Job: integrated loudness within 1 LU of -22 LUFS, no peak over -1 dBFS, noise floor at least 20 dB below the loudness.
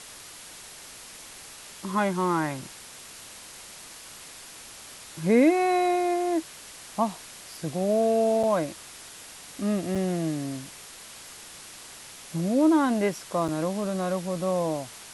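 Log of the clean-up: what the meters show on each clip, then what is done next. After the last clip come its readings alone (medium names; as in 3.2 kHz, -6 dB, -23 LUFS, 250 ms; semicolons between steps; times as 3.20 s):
dropouts 3; longest dropout 5.5 ms; noise floor -45 dBFS; noise floor target -46 dBFS; loudness -26.0 LUFS; peak level -10.0 dBFS; loudness target -22.0 LUFS
-> interpolate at 8.43/9.95/13.48 s, 5.5 ms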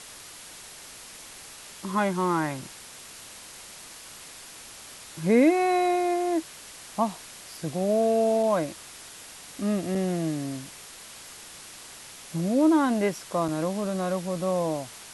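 dropouts 0; noise floor -45 dBFS; noise floor target -46 dBFS
-> noise reduction 6 dB, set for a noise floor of -45 dBFS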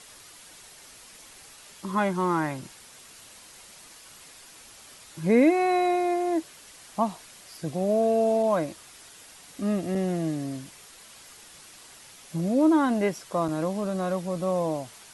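noise floor -50 dBFS; loudness -26.0 LUFS; peak level -10.0 dBFS; loudness target -22.0 LUFS
-> trim +4 dB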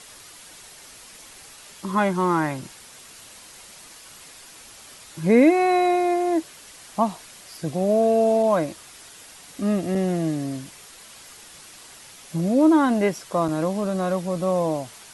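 loudness -22.0 LUFS; peak level -6.0 dBFS; noise floor -46 dBFS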